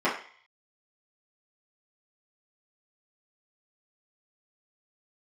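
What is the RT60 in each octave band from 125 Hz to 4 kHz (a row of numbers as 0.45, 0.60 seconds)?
0.40, 0.35, 0.40, 0.55, 0.65, 0.65 seconds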